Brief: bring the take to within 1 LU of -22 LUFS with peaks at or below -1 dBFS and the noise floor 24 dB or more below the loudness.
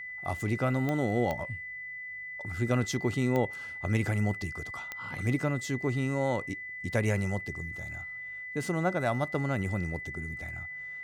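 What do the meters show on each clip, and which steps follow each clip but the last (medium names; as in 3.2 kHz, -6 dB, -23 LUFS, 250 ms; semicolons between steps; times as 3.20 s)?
clicks found 4; steady tone 2 kHz; tone level -38 dBFS; loudness -31.5 LUFS; peak level -14.5 dBFS; loudness target -22.0 LUFS
-> de-click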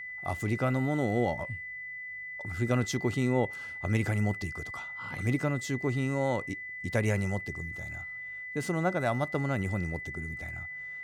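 clicks found 0; steady tone 2 kHz; tone level -38 dBFS
-> band-stop 2 kHz, Q 30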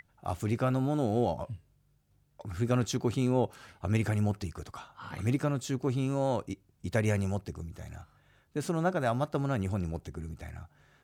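steady tone not found; loudness -31.5 LUFS; peak level -15.5 dBFS; loudness target -22.0 LUFS
-> trim +9.5 dB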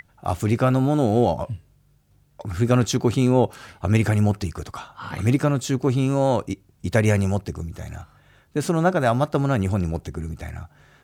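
loudness -22.0 LUFS; peak level -6.0 dBFS; noise floor -59 dBFS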